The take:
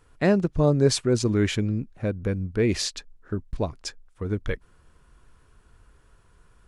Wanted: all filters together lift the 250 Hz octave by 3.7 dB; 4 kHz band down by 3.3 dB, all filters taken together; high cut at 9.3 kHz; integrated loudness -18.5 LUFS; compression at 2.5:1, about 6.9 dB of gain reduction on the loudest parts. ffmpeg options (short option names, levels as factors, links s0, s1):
-af "lowpass=9300,equalizer=f=250:t=o:g=5,equalizer=f=4000:t=o:g=-4,acompressor=threshold=0.0794:ratio=2.5,volume=2.82"